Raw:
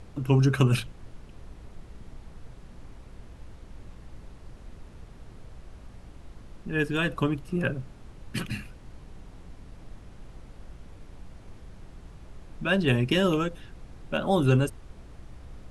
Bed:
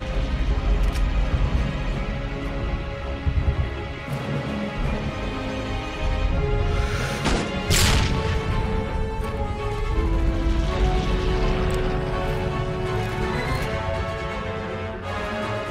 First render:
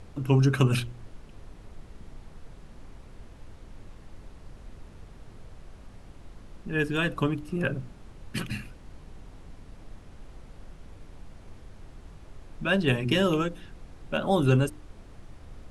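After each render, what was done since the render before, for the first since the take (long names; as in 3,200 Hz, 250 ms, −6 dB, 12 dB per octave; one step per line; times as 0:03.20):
hum removal 60 Hz, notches 6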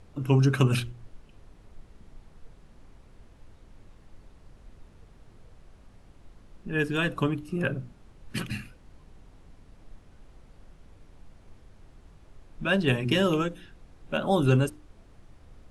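noise reduction from a noise print 6 dB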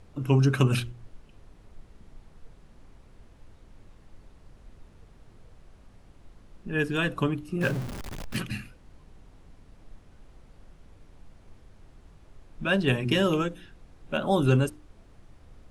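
0:07.61–0:08.37: converter with a step at zero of −31.5 dBFS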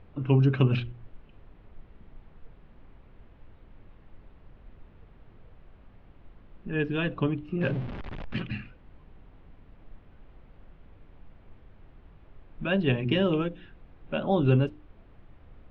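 low-pass filter 3,200 Hz 24 dB per octave
dynamic equaliser 1,400 Hz, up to −6 dB, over −42 dBFS, Q 1.1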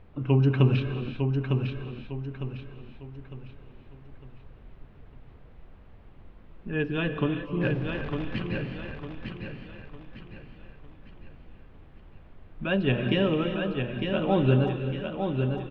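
repeating echo 904 ms, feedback 38%, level −5.5 dB
reverb whose tail is shaped and stops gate 400 ms rising, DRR 7 dB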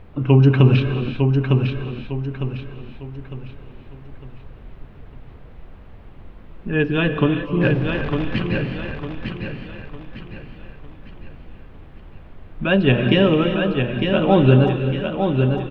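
level +9 dB
brickwall limiter −2 dBFS, peak gain reduction 3 dB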